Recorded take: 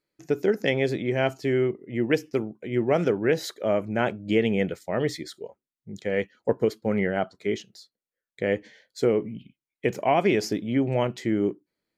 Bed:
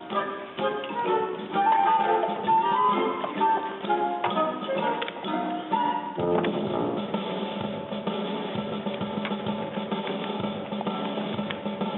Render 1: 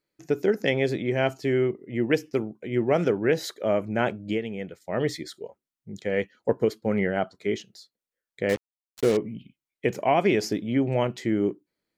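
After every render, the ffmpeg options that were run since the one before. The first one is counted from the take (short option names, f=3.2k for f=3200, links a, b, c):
-filter_complex "[0:a]asettb=1/sr,asplit=3[a][b][c];[a]atrim=end=8.494[d];[b]atrim=start=8.49:end=9.17,asetpts=PTS-STARTPTS,afade=t=in:d=0.004:c=qsin,afade=t=out:st=0.676:d=0.004:c=qsin,acrusher=bits=4:mix=0:aa=0.5[e];[c]atrim=start=9.166[f];[d][e]acrossfade=d=0.004:c1=hsin:c2=qsin[g];[g][f]acrossfade=d=0.004:c1=qsin:c2=hsin,asplit=3[h][i][j];[h]atrim=end=4.41,asetpts=PTS-STARTPTS,afade=t=out:st=4.17:d=0.24:c=qsin:silence=0.334965[k];[i]atrim=start=4.41:end=4.8,asetpts=PTS-STARTPTS,volume=-9.5dB[l];[j]atrim=start=4.8,asetpts=PTS-STARTPTS,afade=t=in:d=0.24:c=qsin:silence=0.334965[m];[k][l][m]concat=n=3:v=0:a=1"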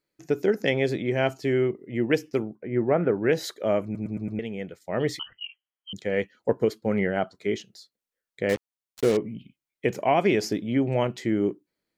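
-filter_complex "[0:a]asettb=1/sr,asplit=3[a][b][c];[a]atrim=end=2.554[d];[b]atrim=start=2.55:end=3.18,asetpts=PTS-STARTPTS,afade=t=in:d=0.004:c=qsin,afade=t=out:st=0.626:d=0.004:c=qsin,lowpass=f=2k:w=0.5412,lowpass=f=2k:w=1.3066[e];[c]atrim=start=3.176[f];[d][e]acrossfade=d=0.004:c1=hsin:c2=qsin[g];[g][f]acrossfade=d=0.004:c1=qsin:c2=hsin,asettb=1/sr,asplit=3[h][i][j];[h]atrim=end=5.194[k];[i]atrim=start=5.19:end=5.93,asetpts=PTS-STARTPTS,afade=t=in:d=0.004:c=qsin,afade=t=out:st=0.736:d=0.004:c=qsin,lowpass=f=2.8k:t=q:w=0.5098,lowpass=f=2.8k:t=q:w=0.6013,lowpass=f=2.8k:t=q:w=0.9,lowpass=f=2.8k:t=q:w=2.563,afreqshift=-3300[l];[j]atrim=start=5.926[m];[k][l]acrossfade=d=0.004:c1=hsin:c2=qsin[n];[n][m]acrossfade=d=0.004:c1=qsin:c2=hsin,asplit=6[o][p][q][r][s][t];[o]atrim=end=3.952[u];[p]atrim=start=3.838:end=3.952[v];[q]atrim=start=3.838:end=3.952[w];[r]atrim=start=3.838:end=3.952[x];[s]atrim=start=3.838:end=3.952[y];[t]atrim=start=4.388[z];[u][v]acrossfade=d=0.004:c1=hsin:c2=hsin[aa];[aa][w]acrossfade=d=0.004:c1=hsin:c2=hsin[ab];[ab][x]acrossfade=d=0.004:c1=hsin:c2=hsin[ac];[ac][y]acrossfade=d=0.004:c1=hsin:c2=hsin[ad];[ad][z]acrossfade=d=0.004:c1=hsin:c2=hsin"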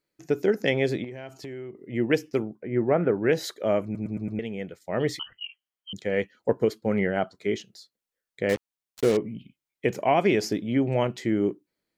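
-filter_complex "[0:a]asettb=1/sr,asplit=3[a][b][c];[a]atrim=end=1.044[d];[b]atrim=start=1.04:end=1.89,asetpts=PTS-STARTPTS,afade=t=in:d=0.004:c=qsin,afade=t=out:st=0.846:d=0.004:c=qsin,acompressor=threshold=-34dB:ratio=10:attack=3.2:release=140:knee=1:detection=peak[e];[c]atrim=start=1.886[f];[d][e]acrossfade=d=0.004:c1=hsin:c2=qsin[g];[g][f]acrossfade=d=0.004:c1=qsin:c2=hsin"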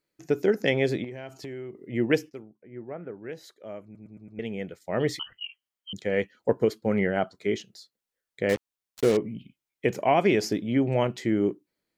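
-filter_complex "[0:a]asplit=3[a][b][c];[a]atrim=end=2.43,asetpts=PTS-STARTPTS,afade=t=out:st=2.29:d=0.14:c=exp:silence=0.16788[d];[b]atrim=start=2.43:end=4.26,asetpts=PTS-STARTPTS,volume=-15.5dB[e];[c]atrim=start=4.26,asetpts=PTS-STARTPTS,afade=t=in:d=0.14:c=exp:silence=0.16788[f];[d][e][f]concat=n=3:v=0:a=1"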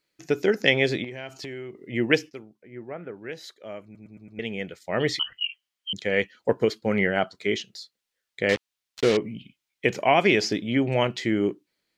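-filter_complex "[0:a]acrossover=split=7000[a][b];[b]acompressor=threshold=-55dB:ratio=4:attack=1:release=60[c];[a][c]amix=inputs=2:normalize=0,equalizer=f=3.4k:t=o:w=2.6:g=9"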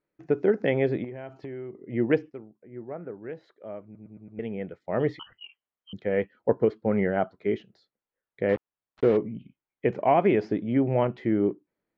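-af "lowpass=1.1k"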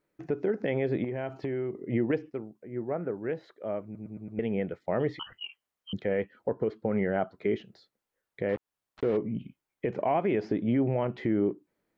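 -filter_complex "[0:a]asplit=2[a][b];[b]acompressor=threshold=-30dB:ratio=6,volume=-1.5dB[c];[a][c]amix=inputs=2:normalize=0,alimiter=limit=-18dB:level=0:latency=1:release=168"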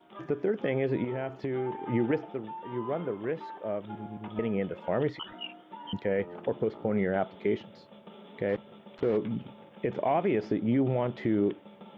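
-filter_complex "[1:a]volume=-20dB[a];[0:a][a]amix=inputs=2:normalize=0"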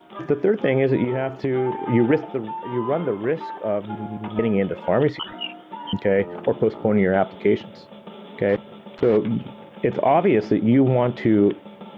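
-af "volume=9.5dB"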